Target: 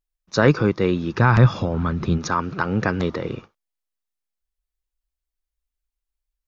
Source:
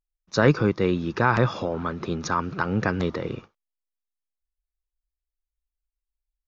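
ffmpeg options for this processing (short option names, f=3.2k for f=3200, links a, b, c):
-filter_complex "[0:a]asplit=3[a][b][c];[a]afade=t=out:st=1.16:d=0.02[d];[b]asubboost=boost=6:cutoff=210,afade=t=in:st=1.16:d=0.02,afade=t=out:st=2.17:d=0.02[e];[c]afade=t=in:st=2.17:d=0.02[f];[d][e][f]amix=inputs=3:normalize=0,volume=2.5dB"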